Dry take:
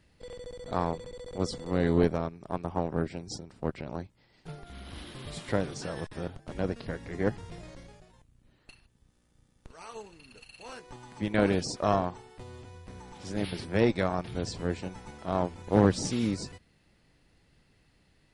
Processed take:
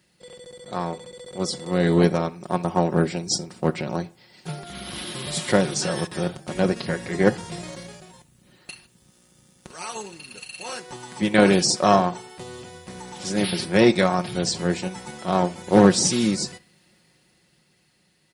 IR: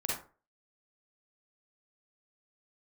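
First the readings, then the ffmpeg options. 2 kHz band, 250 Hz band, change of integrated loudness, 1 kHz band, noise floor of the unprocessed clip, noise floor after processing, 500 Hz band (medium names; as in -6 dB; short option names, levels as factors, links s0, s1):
+10.5 dB, +8.5 dB, +8.5 dB, +9.0 dB, -67 dBFS, -63 dBFS, +8.0 dB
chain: -filter_complex "[0:a]highpass=110,highshelf=f=4200:g=10.5,aecho=1:1:5.5:0.5,dynaudnorm=f=430:g=9:m=4.22,asplit=2[s0][s1];[1:a]atrim=start_sample=2205[s2];[s1][s2]afir=irnorm=-1:irlink=0,volume=0.0794[s3];[s0][s3]amix=inputs=2:normalize=0,volume=0.891"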